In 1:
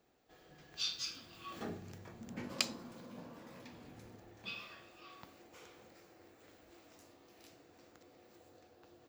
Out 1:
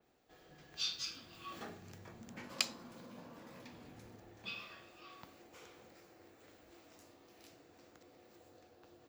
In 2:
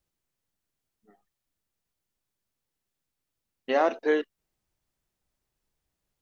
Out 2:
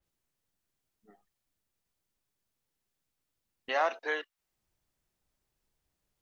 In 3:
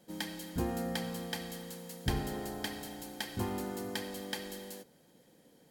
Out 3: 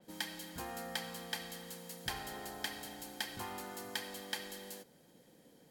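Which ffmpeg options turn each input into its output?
-filter_complex "[0:a]acrossover=split=680|1800[s0][s1][s2];[s0]acompressor=threshold=0.00282:ratio=4[s3];[s3][s1][s2]amix=inputs=3:normalize=0,adynamicequalizer=threshold=0.00251:dfrequency=4700:dqfactor=0.7:tfrequency=4700:tqfactor=0.7:attack=5:release=100:ratio=0.375:range=2:mode=cutabove:tftype=highshelf"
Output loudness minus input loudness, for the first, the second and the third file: -0.5 LU, -6.0 LU, -4.0 LU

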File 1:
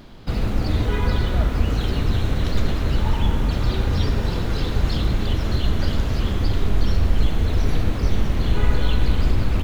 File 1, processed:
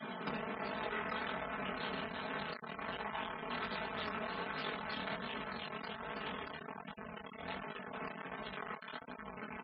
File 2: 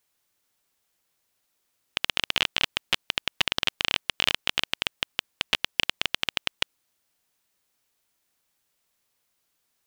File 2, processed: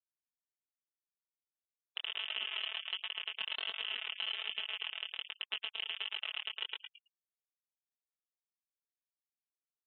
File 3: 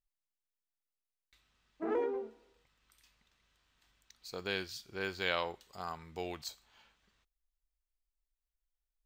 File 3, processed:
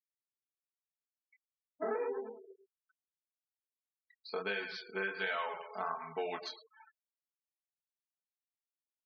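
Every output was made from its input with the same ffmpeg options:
-filter_complex "[0:a]asoftclip=type=tanh:threshold=0.158,asplit=2[s0][s1];[s1]aecho=0:1:110|220|330|440:0.211|0.0845|0.0338|0.0135[s2];[s0][s2]amix=inputs=2:normalize=0,acontrast=66,asoftclip=type=hard:threshold=0.0794,lowpass=2400,lowshelf=f=470:g=-9.5,aecho=1:1:4.6:0.78,flanger=delay=19:depth=7.2:speed=1.3,adynamicequalizer=threshold=0.00316:dfrequency=340:dqfactor=0.89:tfrequency=340:tqfactor=0.89:attack=5:release=100:ratio=0.375:range=3.5:mode=cutabove:tftype=bell,acompressor=threshold=0.0112:ratio=6,highpass=210,afftfilt=real='re*gte(hypot(re,im),0.00282)':imag='im*gte(hypot(re,im),0.00282)':win_size=1024:overlap=0.75,volume=2"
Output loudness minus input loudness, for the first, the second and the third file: -19.0 LU, -11.5 LU, 0.0 LU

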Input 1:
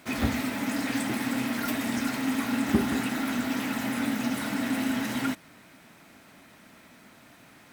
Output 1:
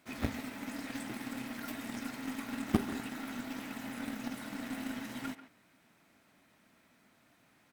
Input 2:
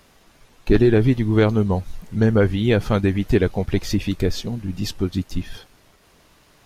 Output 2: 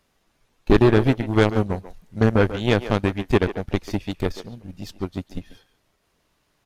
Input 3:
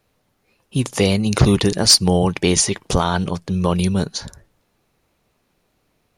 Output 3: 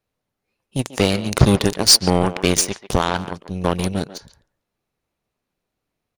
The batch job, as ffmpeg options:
-filter_complex "[0:a]aeval=exprs='0.841*(cos(1*acos(clip(val(0)/0.841,-1,1)))-cos(1*PI/2))+0.0335*(cos(5*acos(clip(val(0)/0.841,-1,1)))-cos(5*PI/2))+0.0119*(cos(6*acos(clip(val(0)/0.841,-1,1)))-cos(6*PI/2))+0.119*(cos(7*acos(clip(val(0)/0.841,-1,1)))-cos(7*PI/2))':c=same,asplit=2[s0][s1];[s1]adelay=140,highpass=300,lowpass=3400,asoftclip=type=hard:threshold=0.335,volume=0.251[s2];[s0][s2]amix=inputs=2:normalize=0"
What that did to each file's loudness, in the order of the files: -11.0 LU, -1.0 LU, -0.5 LU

